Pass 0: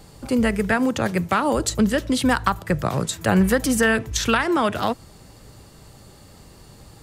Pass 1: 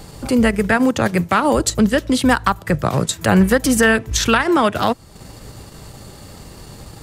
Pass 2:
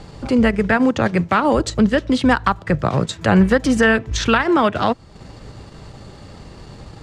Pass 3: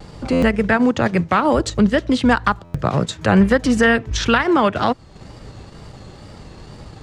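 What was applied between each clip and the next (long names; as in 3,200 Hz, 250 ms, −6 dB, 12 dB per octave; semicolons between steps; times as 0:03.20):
in parallel at 0 dB: downward compressor, threshold −28 dBFS, peak gain reduction 14.5 dB; on the sum: transient designer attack −3 dB, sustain −7 dB; level +3.5 dB
high-frequency loss of the air 110 metres
pitch vibrato 2.1 Hz 71 cents; buffer that repeats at 0:00.32/0:02.64, samples 512, times 8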